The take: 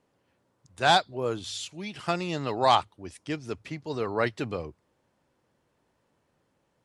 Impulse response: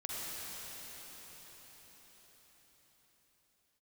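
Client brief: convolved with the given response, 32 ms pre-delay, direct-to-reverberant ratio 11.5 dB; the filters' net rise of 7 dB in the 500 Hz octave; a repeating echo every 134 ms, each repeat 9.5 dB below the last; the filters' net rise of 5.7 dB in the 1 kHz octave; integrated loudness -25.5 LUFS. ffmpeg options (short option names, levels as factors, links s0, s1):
-filter_complex "[0:a]equalizer=f=500:t=o:g=7.5,equalizer=f=1000:t=o:g=4.5,aecho=1:1:134|268|402|536:0.335|0.111|0.0365|0.012,asplit=2[s0][s1];[1:a]atrim=start_sample=2205,adelay=32[s2];[s1][s2]afir=irnorm=-1:irlink=0,volume=0.188[s3];[s0][s3]amix=inputs=2:normalize=0,volume=0.708"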